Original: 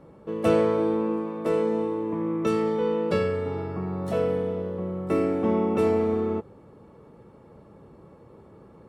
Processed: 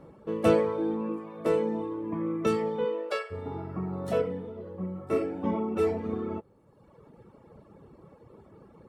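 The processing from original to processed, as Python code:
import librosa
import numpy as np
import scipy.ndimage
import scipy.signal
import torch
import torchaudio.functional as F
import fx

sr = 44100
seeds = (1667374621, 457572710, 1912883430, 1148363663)

y = fx.dereverb_blind(x, sr, rt60_s=1.2)
y = fx.highpass(y, sr, hz=fx.line((2.84, 250.0), (3.3, 760.0)), slope=24, at=(2.84, 3.3), fade=0.02)
y = fx.ensemble(y, sr, at=(4.21, 6.03), fade=0.02)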